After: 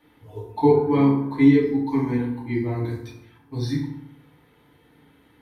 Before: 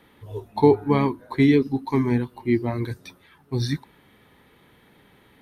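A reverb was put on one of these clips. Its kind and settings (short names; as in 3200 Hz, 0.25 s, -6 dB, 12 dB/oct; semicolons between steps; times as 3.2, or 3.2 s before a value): FDN reverb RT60 0.77 s, low-frequency decay 1.25×, high-frequency decay 0.6×, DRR -6 dB; gain -9.5 dB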